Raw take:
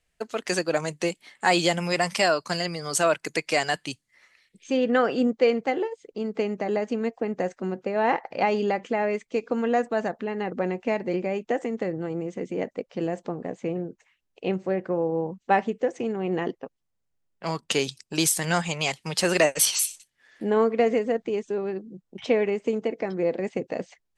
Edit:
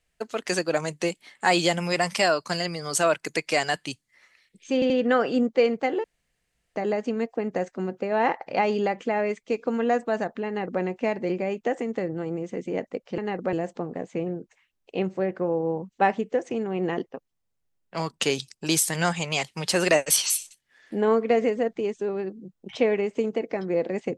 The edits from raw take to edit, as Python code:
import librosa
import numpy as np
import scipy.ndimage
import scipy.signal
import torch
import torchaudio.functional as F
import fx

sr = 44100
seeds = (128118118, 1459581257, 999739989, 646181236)

y = fx.edit(x, sr, fx.stutter(start_s=4.74, slice_s=0.08, count=3),
    fx.room_tone_fill(start_s=5.88, length_s=0.72),
    fx.duplicate(start_s=10.31, length_s=0.35, to_s=13.02), tone=tone)